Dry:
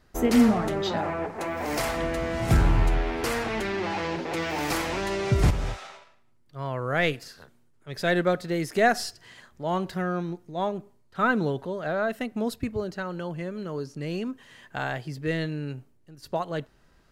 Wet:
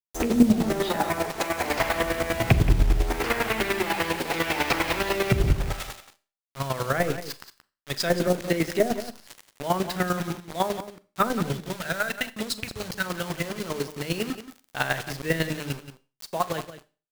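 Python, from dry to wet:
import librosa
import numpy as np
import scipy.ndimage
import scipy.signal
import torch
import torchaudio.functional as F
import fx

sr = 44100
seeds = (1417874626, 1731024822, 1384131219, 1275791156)

y = fx.rattle_buzz(x, sr, strikes_db=-24.0, level_db=-14.0)
y = fx.spec_box(y, sr, start_s=11.39, length_s=1.67, low_hz=200.0, high_hz=1300.0, gain_db=-8)
y = fx.env_lowpass_down(y, sr, base_hz=400.0, full_db=-17.5)
y = fx.high_shelf(y, sr, hz=2100.0, db=10.0)
y = fx.hum_notches(y, sr, base_hz=50, count=7)
y = fx.quant_dither(y, sr, seeds[0], bits=6, dither='none')
y = fx.chopper(y, sr, hz=10.0, depth_pct=65, duty_pct=25)
y = y + 10.0 ** (-12.5 / 20.0) * np.pad(y, (int(177 * sr / 1000.0), 0))[:len(y)]
y = fx.rev_schroeder(y, sr, rt60_s=0.35, comb_ms=29, drr_db=15.5)
y = fx.band_squash(y, sr, depth_pct=40, at=(8.27, 8.91))
y = y * 10.0 ** (5.5 / 20.0)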